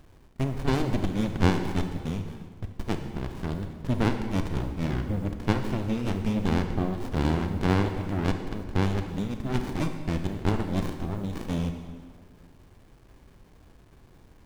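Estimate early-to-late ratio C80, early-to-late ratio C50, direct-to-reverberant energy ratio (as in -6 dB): 8.5 dB, 7.0 dB, 6.0 dB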